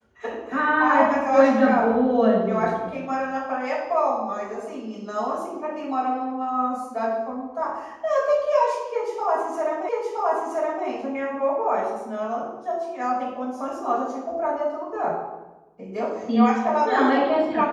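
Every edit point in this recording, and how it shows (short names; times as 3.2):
9.89 repeat of the last 0.97 s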